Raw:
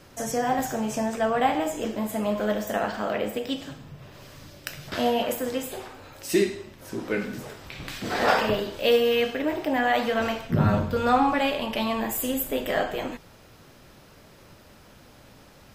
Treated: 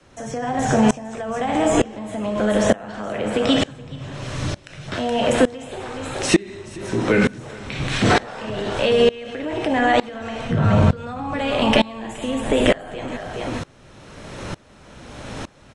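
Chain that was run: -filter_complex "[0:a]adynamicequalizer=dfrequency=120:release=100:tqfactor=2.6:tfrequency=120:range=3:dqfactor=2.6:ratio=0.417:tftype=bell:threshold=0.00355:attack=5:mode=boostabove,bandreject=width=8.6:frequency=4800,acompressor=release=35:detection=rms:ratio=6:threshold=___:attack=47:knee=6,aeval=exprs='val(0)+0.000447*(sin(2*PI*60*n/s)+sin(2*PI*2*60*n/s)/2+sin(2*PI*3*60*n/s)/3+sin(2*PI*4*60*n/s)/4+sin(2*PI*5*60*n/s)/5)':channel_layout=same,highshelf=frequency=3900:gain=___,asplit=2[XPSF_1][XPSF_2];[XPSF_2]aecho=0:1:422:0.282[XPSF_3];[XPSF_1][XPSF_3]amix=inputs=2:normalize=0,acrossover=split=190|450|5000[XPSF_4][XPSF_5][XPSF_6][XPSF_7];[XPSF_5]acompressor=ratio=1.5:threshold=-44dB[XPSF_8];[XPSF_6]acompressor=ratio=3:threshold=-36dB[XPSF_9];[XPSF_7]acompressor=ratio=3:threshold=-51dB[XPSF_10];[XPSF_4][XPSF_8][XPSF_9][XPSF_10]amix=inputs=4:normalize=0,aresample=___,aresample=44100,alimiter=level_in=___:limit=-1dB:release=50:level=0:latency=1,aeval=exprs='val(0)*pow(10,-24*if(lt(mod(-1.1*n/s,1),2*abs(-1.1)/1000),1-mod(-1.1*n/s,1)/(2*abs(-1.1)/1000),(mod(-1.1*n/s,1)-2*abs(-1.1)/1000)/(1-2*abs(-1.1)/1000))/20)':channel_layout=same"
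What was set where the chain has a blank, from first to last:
-34dB, -2.5, 22050, 22dB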